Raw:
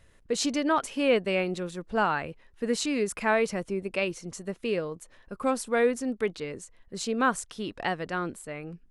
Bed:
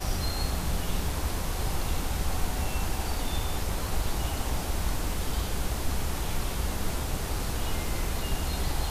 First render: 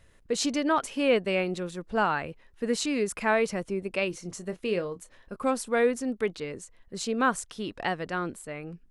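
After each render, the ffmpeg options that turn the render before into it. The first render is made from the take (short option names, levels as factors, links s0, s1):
-filter_complex "[0:a]asettb=1/sr,asplit=3[s0][s1][s2];[s0]atrim=end=4.104[s3];[s1]atrim=start=4.1:end=5.36,asetpts=PTS-STARTPTS,afade=t=in:d=0.004:c=qsin,afade=t=out:st=1.256:d=0.004:c=qsin,asplit=2[s4][s5];[s5]adelay=28,volume=0.266[s6];[s4][s6]amix=inputs=2:normalize=0,atrim=end_sample=55566[s7];[s2]atrim=start=5.356[s8];[s3][s7]acrossfade=d=0.004:c1=hsin:c2=qsin[s9];[s9][s8]acrossfade=d=0.004:c1=qsin:c2=hsin"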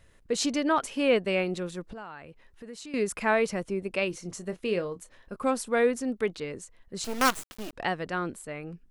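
-filter_complex "[0:a]asettb=1/sr,asplit=3[s0][s1][s2];[s0]atrim=end=1.934[s3];[s1]atrim=start=1.93:end=2.94,asetpts=PTS-STARTPTS,afade=t=in:d=0.004:c=qsin,afade=t=out:st=1.006:d=0.004:c=qsin,acompressor=threshold=0.00447:ratio=2.5:attack=3.2:release=140:knee=1:detection=peak[s4];[s2]atrim=start=2.936[s5];[s3][s4]acrossfade=d=0.004:c1=hsin:c2=qsin[s6];[s6][s5]acrossfade=d=0.004:c1=qsin:c2=hsin,asettb=1/sr,asplit=3[s7][s8][s9];[s7]atrim=end=7.044[s10];[s8]atrim=start=7.04:end=7.73,asetpts=PTS-STARTPTS,afade=t=in:d=0.004:c=qsin,afade=t=out:st=0.686:d=0.004:c=qsin,acrusher=bits=4:dc=4:mix=0:aa=0.000001[s11];[s9]atrim=start=7.726[s12];[s10][s11]acrossfade=d=0.004:c1=hsin:c2=qsin[s13];[s13][s12]acrossfade=d=0.004:c1=qsin:c2=hsin"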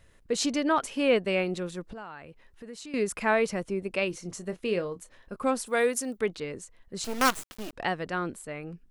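-filter_complex "[0:a]asplit=3[s0][s1][s2];[s0]afade=t=out:st=5.65:d=0.02[s3];[s1]aemphasis=mode=production:type=bsi,afade=t=in:st=5.65:d=0.02,afade=t=out:st=6.16:d=0.02[s4];[s2]afade=t=in:st=6.16:d=0.02[s5];[s3][s4][s5]amix=inputs=3:normalize=0"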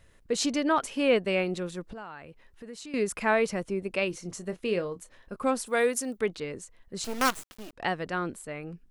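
-filter_complex "[0:a]asplit=2[s0][s1];[s0]atrim=end=7.82,asetpts=PTS-STARTPTS,afade=t=out:st=6.99:d=0.83:silence=0.421697[s2];[s1]atrim=start=7.82,asetpts=PTS-STARTPTS,afade=t=in:d=0.004:c=hsin:silence=0.421697[s3];[s2][s3]concat=n=2:v=0:a=1"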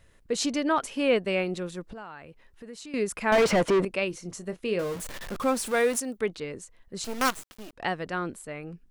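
-filter_complex "[0:a]asettb=1/sr,asplit=3[s0][s1][s2];[s0]atrim=end=3.324[s3];[s1]atrim=start=3.32:end=3.85,asetpts=PTS-STARTPTS,afade=t=in:d=0.004:c=qsin,afade=t=out:st=0.526:d=0.004:c=qsin,asplit=2[s4][s5];[s5]highpass=f=720:p=1,volume=50.1,asoftclip=type=tanh:threshold=0.211[s6];[s4][s6]amix=inputs=2:normalize=0,lowpass=f=1700:p=1,volume=0.501[s7];[s2]atrim=start=3.846[s8];[s3][s7]acrossfade=d=0.004:c1=hsin:c2=qsin[s9];[s9][s8]acrossfade=d=0.004:c1=qsin:c2=hsin,asettb=1/sr,asplit=3[s10][s11][s12];[s10]atrim=end=4.794[s13];[s11]atrim=start=4.79:end=6,asetpts=PTS-STARTPTS,afade=t=in:d=0.004:c=qsin,afade=t=out:st=1.206:d=0.004:c=qsin,aeval=exprs='val(0)+0.5*0.0224*sgn(val(0))':c=same[s14];[s12]atrim=start=5.996[s15];[s13][s14]acrossfade=d=0.004:c1=hsin:c2=qsin[s16];[s16][s15]acrossfade=d=0.004:c1=qsin:c2=hsin"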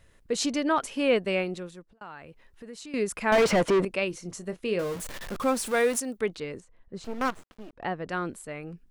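-filter_complex "[0:a]asettb=1/sr,asplit=3[s0][s1][s2];[s0]atrim=end=6.604[s3];[s1]atrim=start=6.6:end=8.09,asetpts=PTS-STARTPTS,afade=t=in:d=0.004:c=qsin,afade=t=out:st=1.486:d=0.004:c=qsin,lowpass=f=1200:p=1[s4];[s2]atrim=start=8.086[s5];[s3][s4]acrossfade=d=0.004:c1=hsin:c2=qsin[s6];[s6][s5]acrossfade=d=0.004:c1=qsin:c2=hsin,asplit=2[s7][s8];[s7]atrim=end=2.01,asetpts=PTS-STARTPTS,afade=t=out:st=1.36:d=0.65[s9];[s8]atrim=start=2.01,asetpts=PTS-STARTPTS,afade=t=in:d=0.004:c=hsin[s10];[s9][s10]concat=n=2:v=0:a=1"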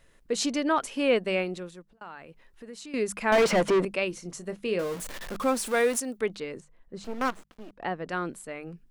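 -af "equalizer=f=91:t=o:w=0.59:g=-11.5,bandreject=f=50:t=h:w=6,bandreject=f=100:t=h:w=6,bandreject=f=150:t=h:w=6,bandreject=f=200:t=h:w=6"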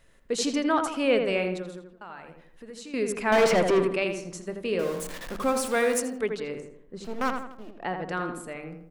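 -filter_complex "[0:a]asplit=2[s0][s1];[s1]adelay=82,lowpass=f=2100:p=1,volume=0.562,asplit=2[s2][s3];[s3]adelay=82,lowpass=f=2100:p=1,volume=0.47,asplit=2[s4][s5];[s5]adelay=82,lowpass=f=2100:p=1,volume=0.47,asplit=2[s6][s7];[s7]adelay=82,lowpass=f=2100:p=1,volume=0.47,asplit=2[s8][s9];[s9]adelay=82,lowpass=f=2100:p=1,volume=0.47,asplit=2[s10][s11];[s11]adelay=82,lowpass=f=2100:p=1,volume=0.47[s12];[s0][s2][s4][s6][s8][s10][s12]amix=inputs=7:normalize=0"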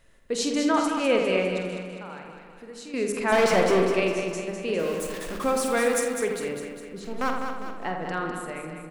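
-filter_complex "[0:a]asplit=2[s0][s1];[s1]adelay=48,volume=0.355[s2];[s0][s2]amix=inputs=2:normalize=0,aecho=1:1:202|404|606|808|1010|1212|1414:0.447|0.241|0.13|0.0703|0.038|0.0205|0.0111"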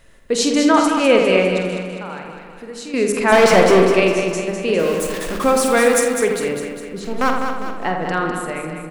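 -af "volume=2.82,alimiter=limit=0.794:level=0:latency=1"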